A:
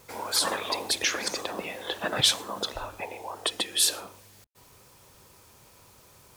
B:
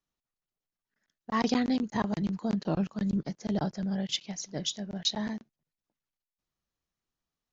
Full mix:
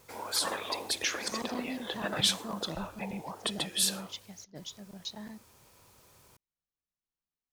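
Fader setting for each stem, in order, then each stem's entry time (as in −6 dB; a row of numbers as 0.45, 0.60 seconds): −5.0, −11.0 decibels; 0.00, 0.00 seconds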